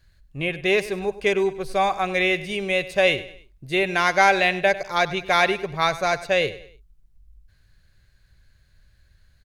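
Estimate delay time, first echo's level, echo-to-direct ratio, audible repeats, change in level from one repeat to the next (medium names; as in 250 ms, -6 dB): 99 ms, -16.0 dB, -15.5 dB, 3, -8.0 dB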